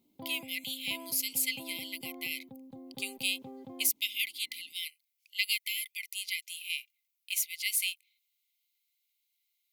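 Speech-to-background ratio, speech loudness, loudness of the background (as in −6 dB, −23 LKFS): 15.5 dB, −33.0 LKFS, −48.5 LKFS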